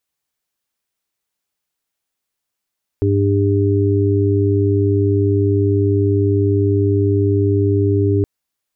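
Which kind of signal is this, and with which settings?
steady harmonic partials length 5.22 s, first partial 100 Hz, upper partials −19/−4.5/−3 dB, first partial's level −14.5 dB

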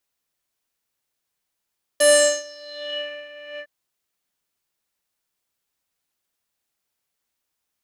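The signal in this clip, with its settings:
subtractive patch with tremolo D5, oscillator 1 square, interval 0 semitones, sub −21.5 dB, noise −16 dB, filter lowpass, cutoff 1,900 Hz, Q 6.9, filter envelope 2.5 octaves, filter decay 1.09 s, filter sustain 15%, attack 10 ms, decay 0.42 s, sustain −20.5 dB, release 0.07 s, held 1.59 s, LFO 1.3 Hz, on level 11 dB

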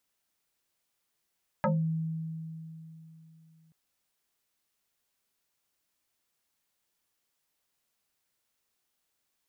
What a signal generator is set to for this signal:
two-operator FM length 2.08 s, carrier 161 Hz, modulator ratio 2.3, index 4.3, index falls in 0.25 s exponential, decay 3.31 s, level −22.5 dB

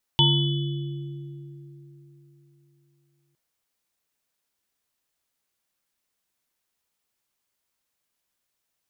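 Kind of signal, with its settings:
inharmonic partials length 3.16 s, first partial 142 Hz, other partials 343/914/3,000/3,420 Hz, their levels −9/−4.5/0/−1 dB, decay 3.65 s, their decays 3.85/0.42/1.15/1.29 s, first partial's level −18 dB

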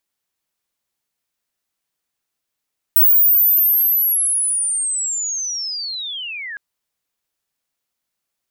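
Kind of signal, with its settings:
glide linear 16,000 Hz → 1,600 Hz −8 dBFS → −27 dBFS 3.61 s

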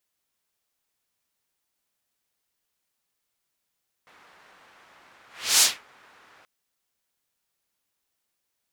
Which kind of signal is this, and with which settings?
pass-by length 2.38 s, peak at 0:01.54, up 0.35 s, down 0.23 s, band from 1,400 Hz, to 6,800 Hz, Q 1.1, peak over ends 39 dB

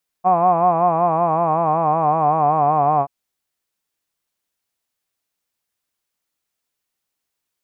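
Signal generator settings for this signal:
vowel by formant synthesis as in hod, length 2.83 s, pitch 178 Hz, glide −3.5 semitones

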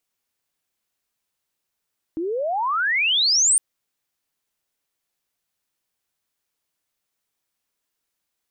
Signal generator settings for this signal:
glide logarithmic 310 Hz → 9,300 Hz −23 dBFS → −13.5 dBFS 1.41 s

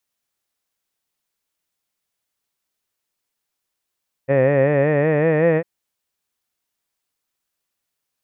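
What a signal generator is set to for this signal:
vowel by formant synthesis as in head, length 1.35 s, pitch 132 Hz, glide +4 semitones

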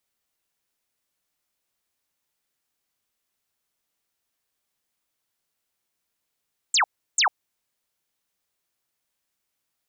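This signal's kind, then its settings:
repeated falling chirps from 8,500 Hz, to 700 Hz, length 0.10 s sine, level −16.5 dB, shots 2, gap 0.34 s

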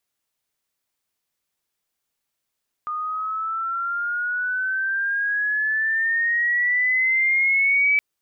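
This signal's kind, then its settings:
pitch glide with a swell sine, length 5.12 s, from 1,220 Hz, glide +11 semitones, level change +9.5 dB, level −15 dB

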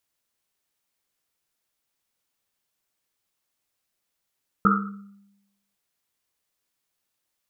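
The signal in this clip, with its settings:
drum after Risset, pitch 200 Hz, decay 0.97 s, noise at 1,300 Hz, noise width 220 Hz, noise 50%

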